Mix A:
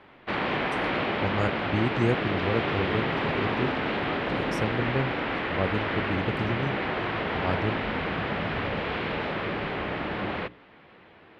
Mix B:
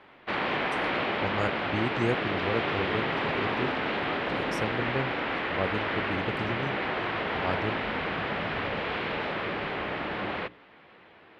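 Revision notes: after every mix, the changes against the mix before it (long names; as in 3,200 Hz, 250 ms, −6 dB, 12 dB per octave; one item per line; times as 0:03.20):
master: add low-shelf EQ 280 Hz −6.5 dB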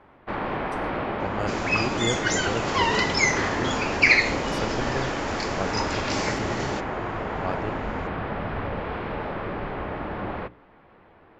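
first sound: remove meter weighting curve D
second sound: unmuted
reverb: on, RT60 0.40 s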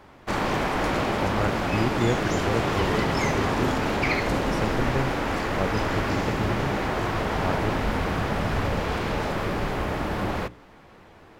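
first sound: remove high-frequency loss of the air 440 metres
second sound −11.0 dB
master: add low-shelf EQ 280 Hz +6.5 dB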